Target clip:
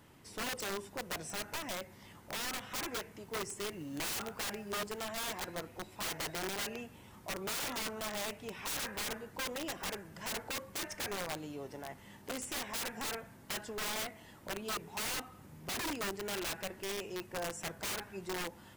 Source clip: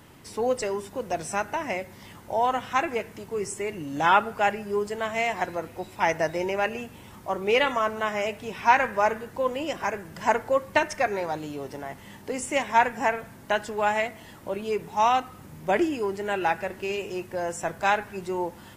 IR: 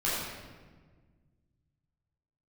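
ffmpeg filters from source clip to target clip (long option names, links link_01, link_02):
-filter_complex "[0:a]aeval=exprs='(mod(15*val(0)+1,2)-1)/15':channel_layout=same,asettb=1/sr,asplit=3[link_01][link_02][link_03];[link_01]atrim=end=3.254[link_04];[link_02]atrim=start=3.25:end=5.05,asetpts=PTS-STARTPTS,afade=type=in:duration=0.004:curve=qsin,afade=type=out:start_time=1.796:duration=0.004:curve=qsin,acrusher=bits=6:mode=log:mix=0:aa=0.000001[link_05];[link_03]atrim=start=5.046[link_06];[link_04][link_05]acrossfade=duration=0.004:curve1=hsin:curve2=qsin[link_07];[link_07][link_06]acrossfade=duration=0.004:curve1=qsin:curve2=hsin,volume=-9dB"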